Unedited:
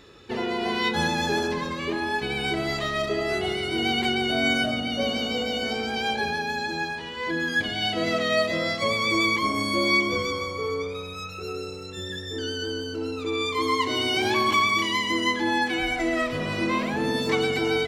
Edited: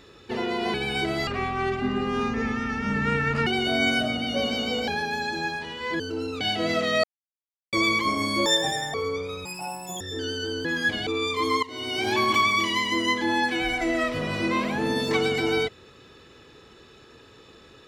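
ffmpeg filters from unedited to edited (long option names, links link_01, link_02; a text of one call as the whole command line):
ffmpeg -i in.wav -filter_complex "[0:a]asplit=16[link_01][link_02][link_03][link_04][link_05][link_06][link_07][link_08][link_09][link_10][link_11][link_12][link_13][link_14][link_15][link_16];[link_01]atrim=end=0.742[link_17];[link_02]atrim=start=2.228:end=2.764[link_18];[link_03]atrim=start=2.76:end=4.1,asetpts=PTS-STARTPTS,asetrate=26901,aresample=44100,atrim=end_sample=96875,asetpts=PTS-STARTPTS[link_19];[link_04]atrim=start=4.096:end=5.512[link_20];[link_05]atrim=start=6.238:end=7.362[link_21];[link_06]atrim=start=12.838:end=13.252[link_22];[link_07]atrim=start=7.778:end=8.41,asetpts=PTS-STARTPTS,afade=type=out:start_time=0.628:duration=0.004:curve=hsin[link_23];[link_08]atrim=start=8.41:end=9.1,asetpts=PTS-STARTPTS,volume=0[link_24];[link_09]atrim=start=9.1:end=9.834,asetpts=PTS-STARTPTS,afade=type=in:duration=0.004:curve=hsin[link_25];[link_10]atrim=start=9.83:end=10.6,asetpts=PTS-STARTPTS,asetrate=70119,aresample=44100[link_26];[link_11]atrim=start=10.596:end=11.114[link_27];[link_12]atrim=start=11.11:end=12.2,asetpts=PTS-STARTPTS,asetrate=86436,aresample=44100[link_28];[link_13]atrim=start=12.196:end=12.842[link_29];[link_14]atrim=start=7.358:end=7.782[link_30];[link_15]atrim=start=13.248:end=13.81,asetpts=PTS-STARTPTS,afade=type=out:start_time=0.558:duration=0.004:curve=hsin:silence=0.125893[link_31];[link_16]atrim=start=13.81,asetpts=PTS-STARTPTS,afade=type=in:duration=0.56:silence=0.125893[link_32];[link_17][link_18]acrossfade=duration=0.004:curve1=hsin:curve2=hsin[link_33];[link_33][link_19]acrossfade=duration=0.004:curve1=hsin:curve2=hsin[link_34];[link_34][link_20]acrossfade=duration=0.004:curve1=hsin:curve2=hsin[link_35];[link_35][link_21]acrossfade=duration=0.004:curve1=hsin:curve2=hsin[link_36];[link_36][link_22]acrossfade=duration=0.004:curve1=hsin:curve2=hsin[link_37];[link_23][link_24][link_25]concat=n=3:v=0:a=1[link_38];[link_37][link_38]acrossfade=duration=0.004:curve1=hsin:curve2=hsin[link_39];[link_39][link_26]acrossfade=duration=0.004:curve1=hsin:curve2=hsin[link_40];[link_40][link_27]acrossfade=duration=0.004:curve1=hsin:curve2=hsin[link_41];[link_41][link_28]acrossfade=duration=0.004:curve1=hsin:curve2=hsin[link_42];[link_42][link_29]acrossfade=duration=0.004:curve1=hsin:curve2=hsin[link_43];[link_43][link_30]acrossfade=duration=0.004:curve1=hsin:curve2=hsin[link_44];[link_31][link_32]concat=n=2:v=0:a=1[link_45];[link_44][link_45]acrossfade=duration=0.004:curve1=hsin:curve2=hsin" out.wav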